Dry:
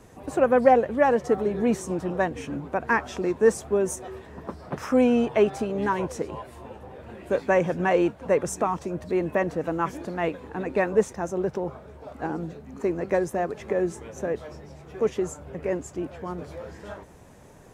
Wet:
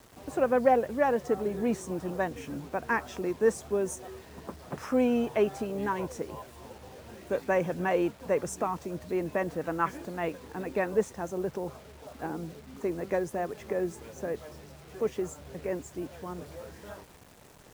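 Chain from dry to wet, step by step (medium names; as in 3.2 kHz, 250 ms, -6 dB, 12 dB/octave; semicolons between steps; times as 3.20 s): 9.53–10.03 s: dynamic bell 1.6 kHz, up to +7 dB, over -39 dBFS, Q 1; bit crusher 8-bit; trim -5.5 dB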